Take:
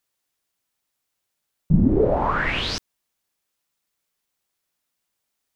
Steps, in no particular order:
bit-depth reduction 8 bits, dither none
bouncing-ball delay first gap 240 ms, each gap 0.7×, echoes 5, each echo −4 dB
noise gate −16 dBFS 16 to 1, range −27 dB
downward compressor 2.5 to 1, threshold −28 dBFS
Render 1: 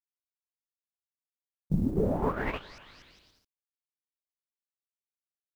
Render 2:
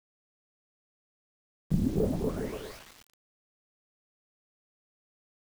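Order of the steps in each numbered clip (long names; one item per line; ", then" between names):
bouncing-ball delay, then bit-depth reduction, then noise gate, then downward compressor
noise gate, then downward compressor, then bouncing-ball delay, then bit-depth reduction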